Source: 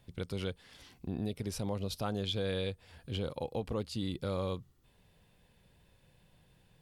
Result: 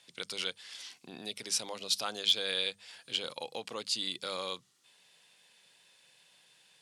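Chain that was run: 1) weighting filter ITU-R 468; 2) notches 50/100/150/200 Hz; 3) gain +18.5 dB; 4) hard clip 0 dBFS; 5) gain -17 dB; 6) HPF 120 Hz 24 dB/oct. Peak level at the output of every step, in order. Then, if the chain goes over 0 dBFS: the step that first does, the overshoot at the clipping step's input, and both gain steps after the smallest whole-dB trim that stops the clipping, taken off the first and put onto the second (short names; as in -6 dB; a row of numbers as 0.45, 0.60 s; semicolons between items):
-15.0, -15.0, +3.5, 0.0, -17.0, -16.5 dBFS; step 3, 3.5 dB; step 3 +14.5 dB, step 5 -13 dB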